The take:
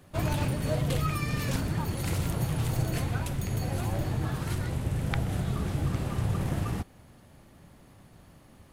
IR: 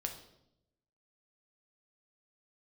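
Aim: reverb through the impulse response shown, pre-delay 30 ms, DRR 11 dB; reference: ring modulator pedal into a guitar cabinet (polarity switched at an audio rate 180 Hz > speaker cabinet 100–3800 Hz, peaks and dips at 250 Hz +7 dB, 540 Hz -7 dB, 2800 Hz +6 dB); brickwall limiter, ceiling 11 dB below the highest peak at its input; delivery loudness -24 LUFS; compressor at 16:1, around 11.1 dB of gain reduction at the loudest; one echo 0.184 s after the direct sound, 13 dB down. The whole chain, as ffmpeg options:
-filter_complex "[0:a]acompressor=threshold=-35dB:ratio=16,alimiter=level_in=11dB:limit=-24dB:level=0:latency=1,volume=-11dB,aecho=1:1:184:0.224,asplit=2[a][b];[1:a]atrim=start_sample=2205,adelay=30[c];[b][c]afir=irnorm=-1:irlink=0,volume=-11dB[d];[a][d]amix=inputs=2:normalize=0,aeval=exprs='val(0)*sgn(sin(2*PI*180*n/s))':c=same,highpass=100,equalizer=f=250:t=q:w=4:g=7,equalizer=f=540:t=q:w=4:g=-7,equalizer=f=2.8k:t=q:w=4:g=6,lowpass=f=3.8k:w=0.5412,lowpass=f=3.8k:w=1.3066,volume=18.5dB"

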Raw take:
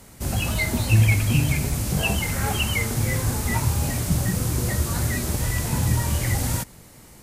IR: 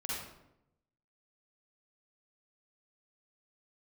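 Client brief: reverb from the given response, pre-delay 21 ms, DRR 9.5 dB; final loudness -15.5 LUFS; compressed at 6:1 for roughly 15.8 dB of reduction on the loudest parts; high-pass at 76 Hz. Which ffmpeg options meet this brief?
-filter_complex "[0:a]highpass=76,acompressor=threshold=-31dB:ratio=6,asplit=2[a][b];[1:a]atrim=start_sample=2205,adelay=21[c];[b][c]afir=irnorm=-1:irlink=0,volume=-12.5dB[d];[a][d]amix=inputs=2:normalize=0,volume=18dB"

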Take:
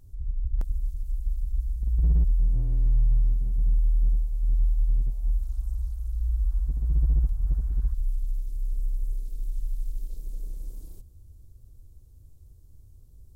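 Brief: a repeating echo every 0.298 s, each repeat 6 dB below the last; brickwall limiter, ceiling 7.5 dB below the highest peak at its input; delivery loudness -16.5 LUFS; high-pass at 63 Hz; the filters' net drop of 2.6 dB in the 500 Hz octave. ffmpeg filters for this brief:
-af "highpass=63,equalizer=f=500:t=o:g=-3.5,alimiter=level_in=1.5dB:limit=-24dB:level=0:latency=1,volume=-1.5dB,aecho=1:1:298|596|894|1192|1490|1788:0.501|0.251|0.125|0.0626|0.0313|0.0157,volume=19.5dB"

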